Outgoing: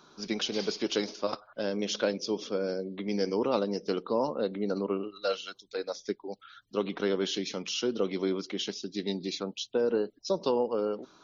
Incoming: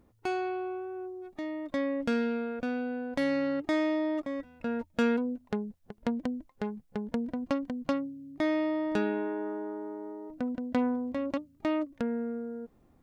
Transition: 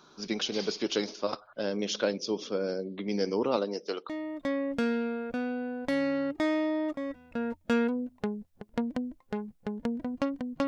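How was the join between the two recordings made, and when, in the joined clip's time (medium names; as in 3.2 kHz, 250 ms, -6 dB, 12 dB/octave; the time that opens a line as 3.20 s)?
outgoing
3.56–4.09 s: high-pass 200 Hz -> 640 Hz
4.09 s: go over to incoming from 1.38 s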